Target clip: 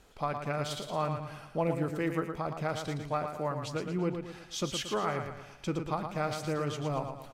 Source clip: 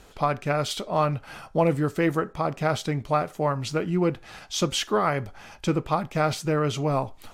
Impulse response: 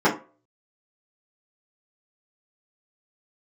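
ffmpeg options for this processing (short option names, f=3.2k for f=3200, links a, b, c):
-af "aecho=1:1:114|228|342|456|570:0.447|0.197|0.0865|0.0381|0.0167,volume=-9dB"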